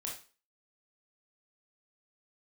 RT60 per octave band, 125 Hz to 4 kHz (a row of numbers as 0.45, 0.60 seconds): 0.30, 0.35, 0.35, 0.35, 0.35, 0.35 seconds